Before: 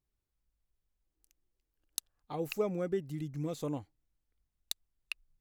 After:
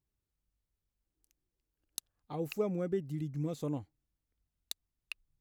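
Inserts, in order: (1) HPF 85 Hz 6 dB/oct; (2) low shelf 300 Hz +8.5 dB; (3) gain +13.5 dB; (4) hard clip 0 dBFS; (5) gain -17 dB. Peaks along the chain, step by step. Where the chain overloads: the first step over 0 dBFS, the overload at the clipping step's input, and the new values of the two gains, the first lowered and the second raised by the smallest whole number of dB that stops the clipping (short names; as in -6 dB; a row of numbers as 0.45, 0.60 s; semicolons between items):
-18.0, -17.5, -4.0, -4.0, -21.0 dBFS; no overload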